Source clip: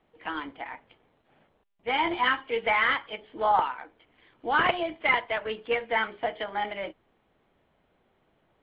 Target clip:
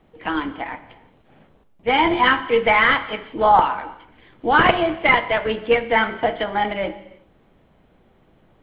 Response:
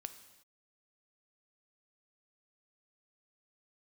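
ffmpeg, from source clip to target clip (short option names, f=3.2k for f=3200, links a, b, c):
-filter_complex "[0:a]asplit=2[a][b];[1:a]atrim=start_sample=2205,lowshelf=f=370:g=11.5[c];[b][c]afir=irnorm=-1:irlink=0,volume=11.5dB[d];[a][d]amix=inputs=2:normalize=0,volume=-3dB"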